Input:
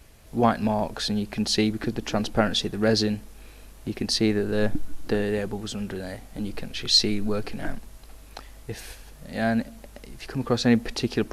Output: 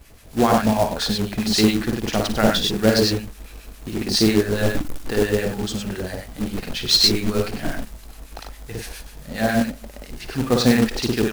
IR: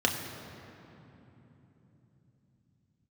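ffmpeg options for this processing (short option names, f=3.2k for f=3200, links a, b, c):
-filter_complex "[0:a]aecho=1:1:55.39|96.21:0.708|0.631,acrossover=split=1100[a][b];[a]aeval=exprs='val(0)*(1-0.7/2+0.7/2*cos(2*PI*7.3*n/s))':c=same[c];[b]aeval=exprs='val(0)*(1-0.7/2-0.7/2*cos(2*PI*7.3*n/s))':c=same[d];[c][d]amix=inputs=2:normalize=0,acrusher=bits=3:mode=log:mix=0:aa=0.000001,volume=5.5dB"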